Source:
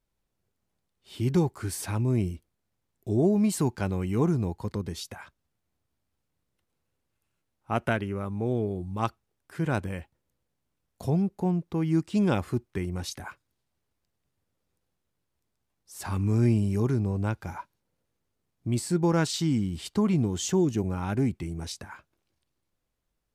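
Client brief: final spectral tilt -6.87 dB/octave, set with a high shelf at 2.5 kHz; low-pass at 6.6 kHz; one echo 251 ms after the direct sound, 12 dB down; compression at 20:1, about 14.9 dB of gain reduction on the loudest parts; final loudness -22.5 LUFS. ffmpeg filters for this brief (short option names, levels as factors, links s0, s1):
-af "lowpass=6600,highshelf=f=2500:g=-8,acompressor=threshold=0.02:ratio=20,aecho=1:1:251:0.251,volume=7.5"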